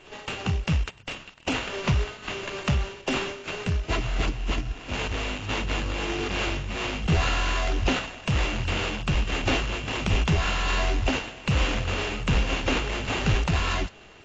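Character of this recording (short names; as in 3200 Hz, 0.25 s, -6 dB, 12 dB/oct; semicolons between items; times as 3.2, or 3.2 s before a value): a buzz of ramps at a fixed pitch in blocks of 16 samples; tremolo triangle 1.3 Hz, depth 35%; aliases and images of a low sample rate 5600 Hz, jitter 20%; AAC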